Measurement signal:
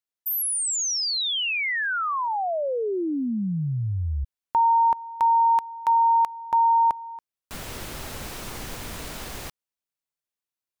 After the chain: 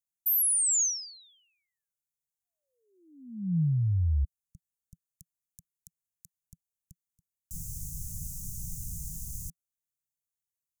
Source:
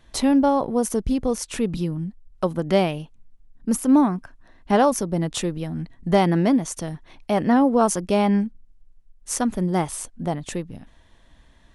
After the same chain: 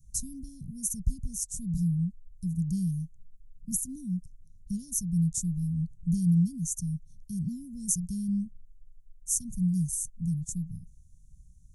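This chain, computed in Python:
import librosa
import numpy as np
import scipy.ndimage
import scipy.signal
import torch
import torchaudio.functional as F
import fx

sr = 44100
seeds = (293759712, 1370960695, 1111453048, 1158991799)

y = scipy.signal.sosfilt(scipy.signal.cheby1(4, 1.0, [170.0, 6400.0], 'bandstop', fs=sr, output='sos'), x)
y = y * librosa.db_to_amplitude(1.0)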